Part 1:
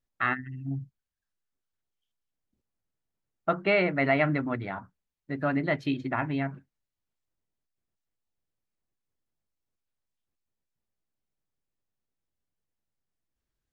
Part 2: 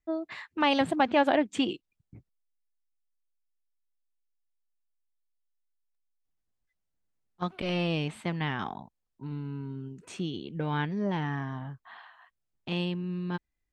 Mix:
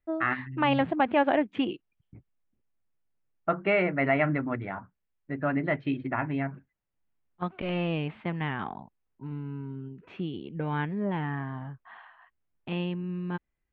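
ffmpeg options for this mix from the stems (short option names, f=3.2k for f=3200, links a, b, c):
-filter_complex "[0:a]volume=-0.5dB[a];[1:a]volume=0dB[b];[a][b]amix=inputs=2:normalize=0,lowpass=f=2.8k:w=0.5412,lowpass=f=2.8k:w=1.3066"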